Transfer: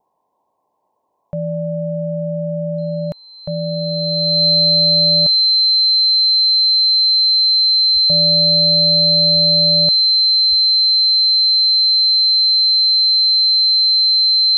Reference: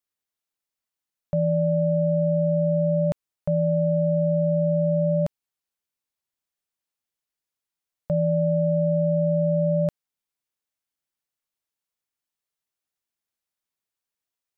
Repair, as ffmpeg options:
-filter_complex "[0:a]bandreject=f=4100:w=30,asplit=3[s0][s1][s2];[s0]afade=t=out:st=7.93:d=0.02[s3];[s1]highpass=f=140:w=0.5412,highpass=f=140:w=1.3066,afade=t=in:st=7.93:d=0.02,afade=t=out:st=8.05:d=0.02[s4];[s2]afade=t=in:st=8.05:d=0.02[s5];[s3][s4][s5]amix=inputs=3:normalize=0,asplit=3[s6][s7][s8];[s6]afade=t=out:st=9.33:d=0.02[s9];[s7]highpass=f=140:w=0.5412,highpass=f=140:w=1.3066,afade=t=in:st=9.33:d=0.02,afade=t=out:st=9.45:d=0.02[s10];[s8]afade=t=in:st=9.45:d=0.02[s11];[s9][s10][s11]amix=inputs=3:normalize=0,asplit=3[s12][s13][s14];[s12]afade=t=out:st=10.49:d=0.02[s15];[s13]highpass=f=140:w=0.5412,highpass=f=140:w=1.3066,afade=t=in:st=10.49:d=0.02,afade=t=out:st=10.61:d=0.02[s16];[s14]afade=t=in:st=10.61:d=0.02[s17];[s15][s16][s17]amix=inputs=3:normalize=0,afftdn=nr=30:nf=-41"

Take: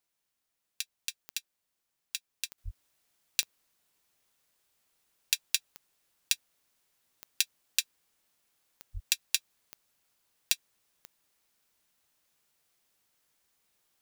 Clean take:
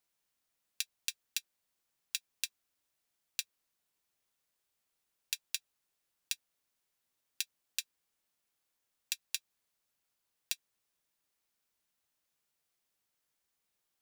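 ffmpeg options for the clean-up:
-filter_complex "[0:a]adeclick=t=4,asplit=3[s0][s1][s2];[s0]afade=t=out:st=2.64:d=0.02[s3];[s1]highpass=f=140:w=0.5412,highpass=f=140:w=1.3066,afade=t=in:st=2.64:d=0.02,afade=t=out:st=2.76:d=0.02[s4];[s2]afade=t=in:st=2.76:d=0.02[s5];[s3][s4][s5]amix=inputs=3:normalize=0,asplit=3[s6][s7][s8];[s6]afade=t=out:st=8.93:d=0.02[s9];[s7]highpass=f=140:w=0.5412,highpass=f=140:w=1.3066,afade=t=in:st=8.93:d=0.02,afade=t=out:st=9.05:d=0.02[s10];[s8]afade=t=in:st=9.05:d=0.02[s11];[s9][s10][s11]amix=inputs=3:normalize=0,asetnsamples=n=441:p=0,asendcmd='2.58 volume volume -8.5dB',volume=1"

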